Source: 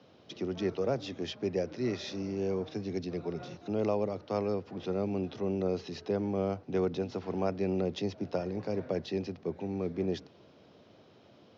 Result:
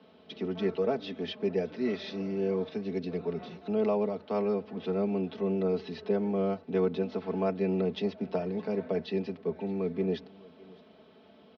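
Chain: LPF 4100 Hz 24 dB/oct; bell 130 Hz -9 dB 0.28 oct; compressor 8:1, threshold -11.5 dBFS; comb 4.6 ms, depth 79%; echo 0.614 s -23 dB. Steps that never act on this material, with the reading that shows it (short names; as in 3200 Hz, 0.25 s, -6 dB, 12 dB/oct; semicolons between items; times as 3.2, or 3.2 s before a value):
compressor, threshold -11.5 dBFS: input peak -18.0 dBFS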